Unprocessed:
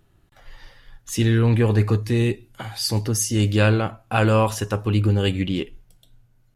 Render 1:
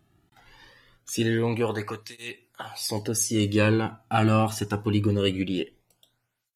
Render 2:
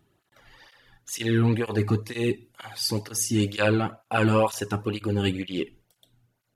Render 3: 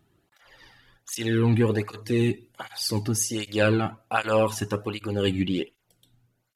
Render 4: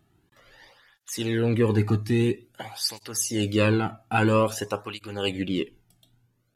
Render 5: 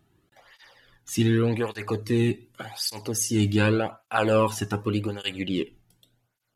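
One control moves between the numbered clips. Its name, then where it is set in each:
tape flanging out of phase, nulls at: 0.23, 2.1, 1.3, 0.5, 0.86 Hz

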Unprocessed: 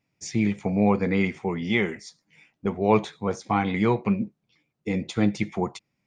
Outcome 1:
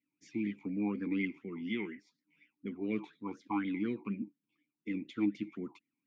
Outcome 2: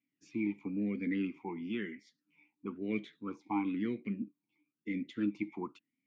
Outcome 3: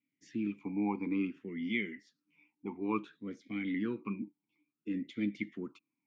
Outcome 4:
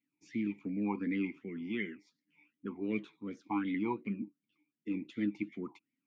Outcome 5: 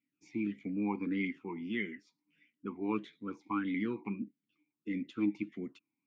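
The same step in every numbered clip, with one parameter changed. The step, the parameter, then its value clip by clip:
vowel sweep, rate: 4.1, 1, 0.57, 2.7, 1.6 Hz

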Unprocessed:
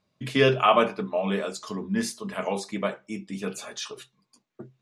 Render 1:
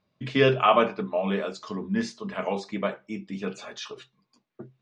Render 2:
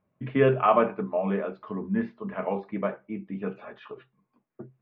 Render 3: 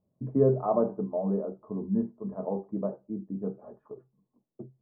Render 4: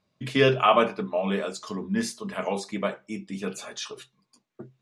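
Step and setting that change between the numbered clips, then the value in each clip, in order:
Bessel low-pass, frequency: 4300, 1500, 530, 11000 Hz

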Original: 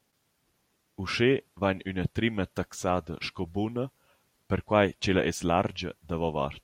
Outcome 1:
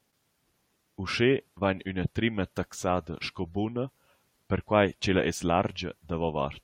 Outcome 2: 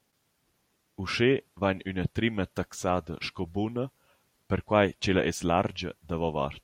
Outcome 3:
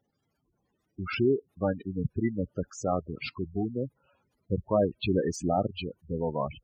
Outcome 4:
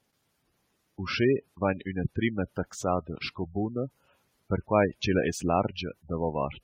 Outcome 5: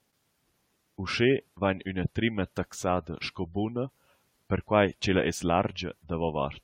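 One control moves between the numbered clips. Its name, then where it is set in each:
spectral gate, under each frame's peak: -45, -60, -10, -20, -35 dB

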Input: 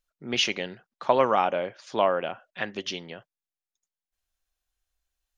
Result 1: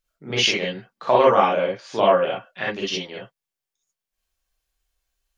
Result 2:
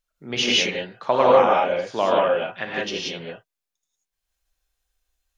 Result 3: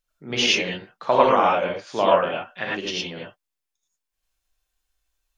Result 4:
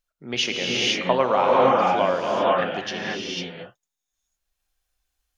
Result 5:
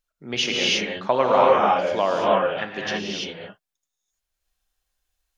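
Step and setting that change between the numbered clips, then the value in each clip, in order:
non-linear reverb, gate: 80, 210, 130, 530, 360 ms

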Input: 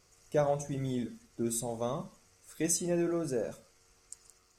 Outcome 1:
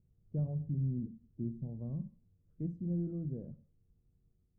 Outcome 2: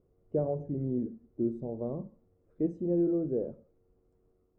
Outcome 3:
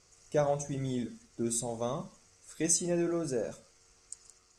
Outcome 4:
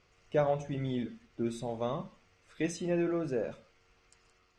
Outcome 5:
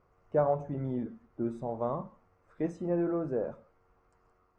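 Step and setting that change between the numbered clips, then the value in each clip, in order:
synth low-pass, frequency: 160, 400, 7700, 3000, 1100 Hz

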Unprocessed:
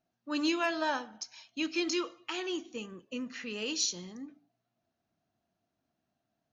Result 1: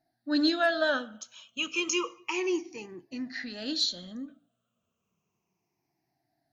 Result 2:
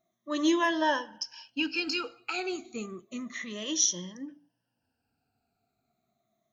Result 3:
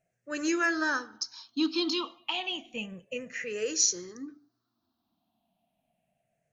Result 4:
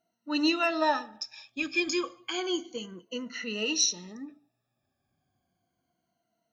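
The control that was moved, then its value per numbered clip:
moving spectral ripple, ripples per octave: 0.77, 1.2, 0.51, 1.9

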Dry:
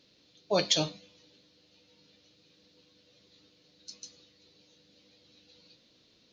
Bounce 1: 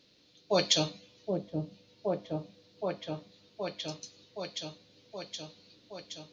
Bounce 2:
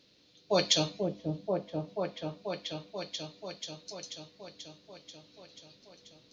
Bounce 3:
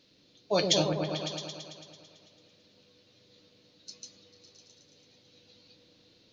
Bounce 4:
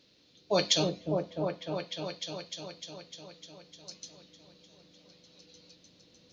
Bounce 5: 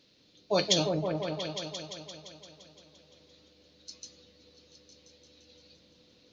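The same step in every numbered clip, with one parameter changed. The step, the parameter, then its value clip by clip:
repeats that get brighter, time: 0.771, 0.486, 0.111, 0.302, 0.172 s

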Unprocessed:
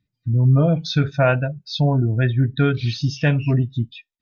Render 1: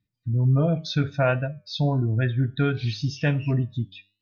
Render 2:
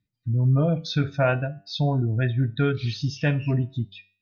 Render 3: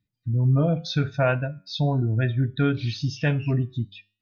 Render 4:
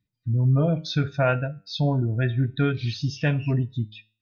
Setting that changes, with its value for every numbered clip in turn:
flange, rate: 1.4, 0.41, 0.93, 0.23 Hz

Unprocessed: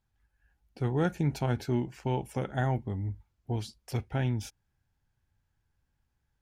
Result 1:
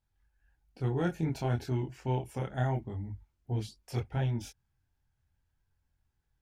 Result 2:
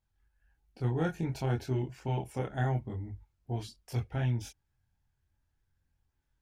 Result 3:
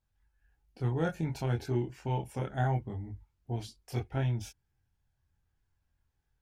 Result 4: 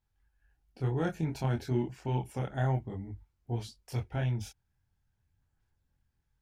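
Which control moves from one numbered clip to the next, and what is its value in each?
chorus, rate: 0.94, 0.58, 0.22, 2 Hz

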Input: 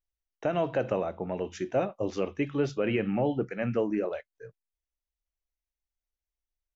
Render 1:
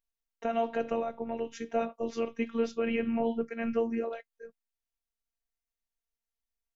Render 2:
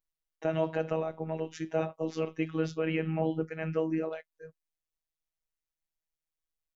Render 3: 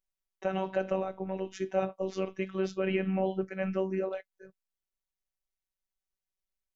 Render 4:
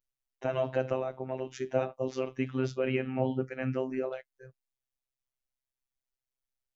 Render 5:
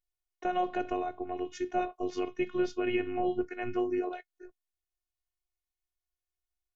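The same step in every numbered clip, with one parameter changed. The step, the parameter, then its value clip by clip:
robotiser, frequency: 230, 160, 190, 130, 360 Hz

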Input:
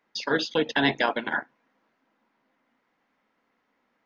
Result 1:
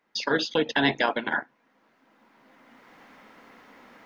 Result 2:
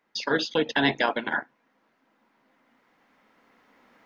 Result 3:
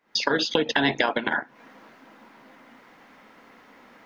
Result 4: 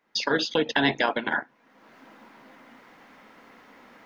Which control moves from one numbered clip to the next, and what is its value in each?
recorder AGC, rising by: 13, 5.2, 86, 34 dB/s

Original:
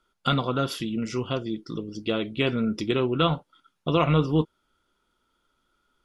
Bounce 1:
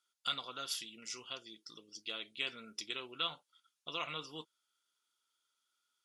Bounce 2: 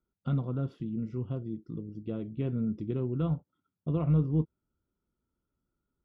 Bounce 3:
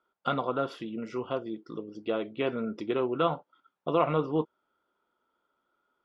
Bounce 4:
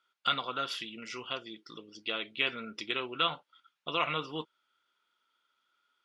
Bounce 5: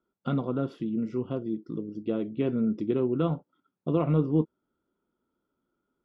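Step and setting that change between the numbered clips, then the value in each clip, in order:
band-pass, frequency: 7600, 100, 710, 2500, 260 Hz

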